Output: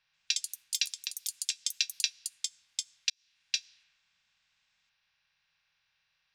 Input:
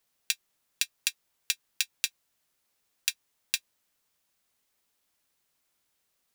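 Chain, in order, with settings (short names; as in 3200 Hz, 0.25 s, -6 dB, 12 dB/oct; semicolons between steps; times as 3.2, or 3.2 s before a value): per-bin compression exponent 0.6; low-pass opened by the level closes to 1100 Hz, open at -30 dBFS; EQ curve 170 Hz 0 dB, 250 Hz -22 dB, 5600 Hz +7 dB, 10000 Hz -22 dB; 0.93–1.66 compressor, threshold -32 dBFS, peak gain reduction 11 dB; echoes that change speed 0.136 s, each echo +5 st, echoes 3; 3.1–3.56 fade in; gain -2 dB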